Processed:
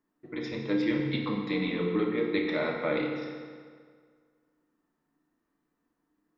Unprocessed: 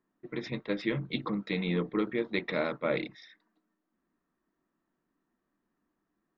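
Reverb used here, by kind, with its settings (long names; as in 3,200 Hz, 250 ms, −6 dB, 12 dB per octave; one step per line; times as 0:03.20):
feedback delay network reverb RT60 1.9 s, low-frequency decay 0.95×, high-frequency decay 0.75×, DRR −0.5 dB
level −1.5 dB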